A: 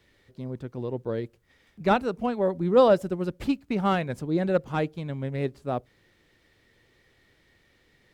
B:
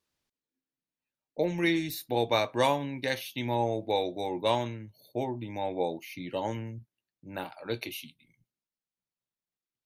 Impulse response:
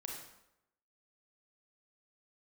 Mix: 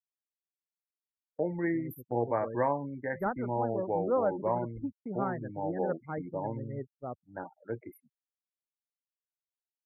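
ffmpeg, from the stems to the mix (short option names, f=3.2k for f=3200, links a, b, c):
-filter_complex "[0:a]acrossover=split=2600[a][b];[b]acompressor=threshold=-52dB:ratio=4:attack=1:release=60[c];[a][c]amix=inputs=2:normalize=0,highshelf=f=2.4k:g=9,adelay=1350,volume=-11dB[d];[1:a]equalizer=f=13k:w=1.1:g=-2.5,volume=-3dB[e];[d][e]amix=inputs=2:normalize=0,afftfilt=real='re*gte(hypot(re,im),0.0126)':imag='im*gte(hypot(re,im),0.0126)':win_size=1024:overlap=0.75,agate=range=-33dB:threshold=-40dB:ratio=3:detection=peak,asuperstop=centerf=4600:order=20:qfactor=0.59"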